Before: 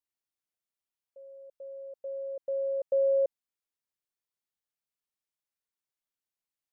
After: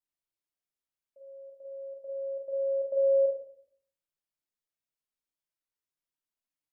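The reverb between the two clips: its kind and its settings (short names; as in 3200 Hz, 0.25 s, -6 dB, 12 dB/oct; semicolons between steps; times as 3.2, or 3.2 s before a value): shoebox room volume 810 m³, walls furnished, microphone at 2.8 m; gain -6.5 dB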